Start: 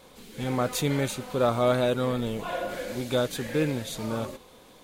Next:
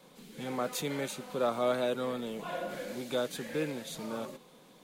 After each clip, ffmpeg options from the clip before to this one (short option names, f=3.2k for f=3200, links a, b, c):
-filter_complex "[0:a]lowshelf=f=120:t=q:w=3:g=-9.5,acrossover=split=300|480|6600[a][b][c][d];[a]acompressor=threshold=-39dB:ratio=4[e];[e][b][c][d]amix=inputs=4:normalize=0,volume=-6dB"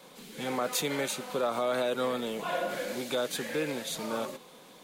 -af "alimiter=level_in=1.5dB:limit=-24dB:level=0:latency=1:release=77,volume=-1.5dB,lowshelf=f=290:g=-8.5,volume=7dB"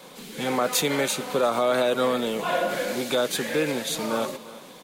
-af "aecho=1:1:349:0.119,volume=7dB"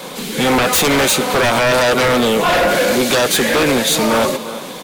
-af "aeval=exprs='0.282*sin(PI/2*3.55*val(0)/0.282)':c=same,volume=1dB"